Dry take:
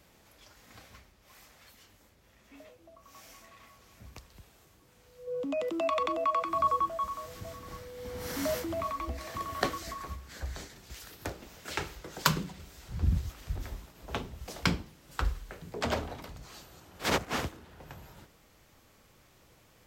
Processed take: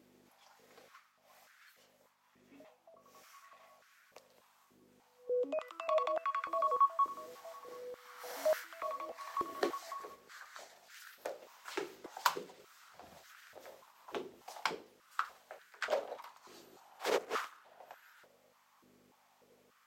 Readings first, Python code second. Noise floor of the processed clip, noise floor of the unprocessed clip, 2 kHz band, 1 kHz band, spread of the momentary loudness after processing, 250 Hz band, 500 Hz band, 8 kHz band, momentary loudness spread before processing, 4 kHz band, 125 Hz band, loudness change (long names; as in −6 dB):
−70 dBFS, −62 dBFS, −6.0 dB, −3.5 dB, 22 LU, −13.0 dB, −2.5 dB, −9.0 dB, 22 LU, −8.5 dB, below −30 dB, −4.5 dB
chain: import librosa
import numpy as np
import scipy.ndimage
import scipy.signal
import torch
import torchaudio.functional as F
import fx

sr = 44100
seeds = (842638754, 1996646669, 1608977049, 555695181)

y = fx.add_hum(x, sr, base_hz=50, snr_db=10)
y = fx.filter_held_highpass(y, sr, hz=3.4, low_hz=360.0, high_hz=1500.0)
y = F.gain(torch.from_numpy(y), -9.0).numpy()